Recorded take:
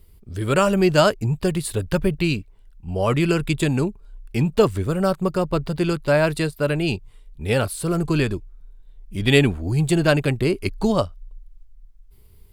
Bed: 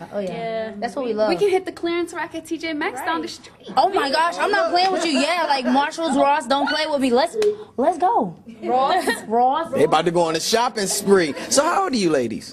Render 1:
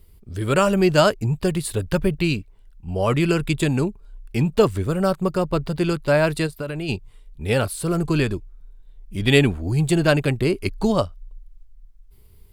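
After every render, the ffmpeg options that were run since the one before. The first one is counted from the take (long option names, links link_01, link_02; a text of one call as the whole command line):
ffmpeg -i in.wav -filter_complex "[0:a]asplit=3[link_01][link_02][link_03];[link_01]afade=type=out:start_time=6.46:duration=0.02[link_04];[link_02]acompressor=threshold=-24dB:ratio=6:attack=3.2:release=140:knee=1:detection=peak,afade=type=in:start_time=6.46:duration=0.02,afade=type=out:start_time=6.88:duration=0.02[link_05];[link_03]afade=type=in:start_time=6.88:duration=0.02[link_06];[link_04][link_05][link_06]amix=inputs=3:normalize=0" out.wav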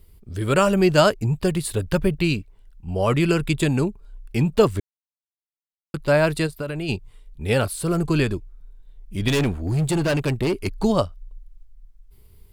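ffmpeg -i in.wav -filter_complex "[0:a]asettb=1/sr,asplit=3[link_01][link_02][link_03];[link_01]atrim=end=9.284[link_04];[link_02]atrim=start=9.28:end=10.84,asetpts=PTS-STARTPTS,afade=type=in:duration=0.004:curve=qsin,afade=type=out:start_time=1.556:duration=0.004:curve=qsin,asoftclip=type=hard:threshold=-17.5dB[link_05];[link_03]atrim=start=10.836[link_06];[link_04][link_05]acrossfade=duration=0.004:curve1=hsin:curve2=qsin[link_07];[link_07][link_06]acrossfade=duration=0.004:curve1=qsin:curve2=hsin,asplit=3[link_08][link_09][link_10];[link_08]atrim=end=4.8,asetpts=PTS-STARTPTS,afade=type=out:start_time=4.796:duration=0.004:curve=hsin[link_11];[link_09]atrim=start=4.8:end=5.94,asetpts=PTS-STARTPTS,volume=0[link_12];[link_10]atrim=start=5.94,asetpts=PTS-STARTPTS,afade=type=in:duration=0.004:curve=hsin[link_13];[link_11][link_12][link_13]concat=n=3:v=0:a=1" out.wav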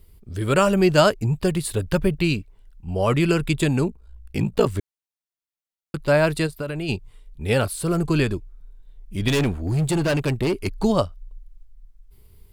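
ffmpeg -i in.wav -filter_complex "[0:a]asettb=1/sr,asplit=3[link_01][link_02][link_03];[link_01]atrim=end=3.874[link_04];[link_02]atrim=start=3.87:end=4.67,asetpts=PTS-STARTPTS,afade=type=in:duration=0.004:curve=qsin,afade=type=out:start_time=0.796:duration=0.004:curve=qsin,aeval=exprs='val(0)*sin(2*PI*28*n/s)':channel_layout=same[link_05];[link_03]atrim=start=4.666[link_06];[link_04][link_05]acrossfade=duration=0.004:curve1=hsin:curve2=qsin[link_07];[link_07][link_06]acrossfade=duration=0.004:curve1=qsin:curve2=hsin" out.wav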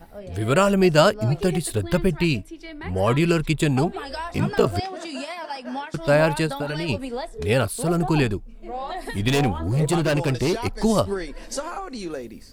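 ffmpeg -i in.wav -i bed.wav -filter_complex "[1:a]volume=-13dB[link_01];[0:a][link_01]amix=inputs=2:normalize=0" out.wav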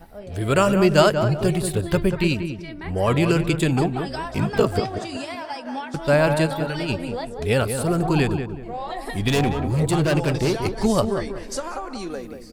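ffmpeg -i in.wav -filter_complex "[0:a]asplit=2[link_01][link_02];[link_02]adelay=186,lowpass=frequency=1600:poles=1,volume=-7dB,asplit=2[link_03][link_04];[link_04]adelay=186,lowpass=frequency=1600:poles=1,volume=0.34,asplit=2[link_05][link_06];[link_06]adelay=186,lowpass=frequency=1600:poles=1,volume=0.34,asplit=2[link_07][link_08];[link_08]adelay=186,lowpass=frequency=1600:poles=1,volume=0.34[link_09];[link_01][link_03][link_05][link_07][link_09]amix=inputs=5:normalize=0" out.wav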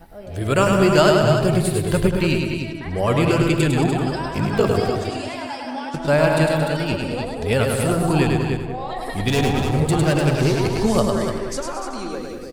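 ffmpeg -i in.wav -af "aecho=1:1:104|225|298|385:0.631|0.299|0.422|0.15" out.wav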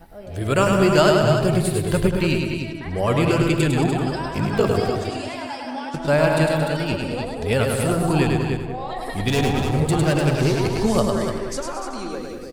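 ffmpeg -i in.wav -af "volume=-1dB" out.wav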